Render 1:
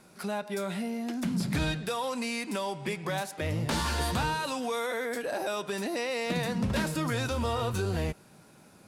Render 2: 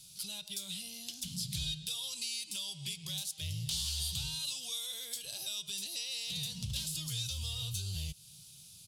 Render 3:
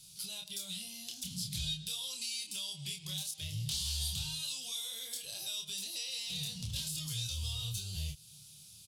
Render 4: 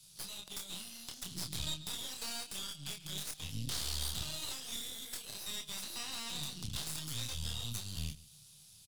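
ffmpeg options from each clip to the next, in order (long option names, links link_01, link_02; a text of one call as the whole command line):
ffmpeg -i in.wav -af "firequalizer=gain_entry='entry(140,0);entry(240,-24);entry(1800,-21);entry(3100,10)':delay=0.05:min_phase=1,acompressor=threshold=-40dB:ratio=2" out.wav
ffmpeg -i in.wav -filter_complex "[0:a]asplit=2[link_01][link_02];[link_02]adelay=27,volume=-4dB[link_03];[link_01][link_03]amix=inputs=2:normalize=0,volume=-2dB" out.wav
ffmpeg -i in.wav -filter_complex "[0:a]aeval=exprs='0.075*(cos(1*acos(clip(val(0)/0.075,-1,1)))-cos(1*PI/2))+0.0168*(cos(6*acos(clip(val(0)/0.075,-1,1)))-cos(6*PI/2))':channel_layout=same,acrossover=split=220|1500[link_01][link_02][link_03];[link_02]crystalizer=i=4:c=0[link_04];[link_01][link_04][link_03]amix=inputs=3:normalize=0,aecho=1:1:140:0.112,volume=-4dB" out.wav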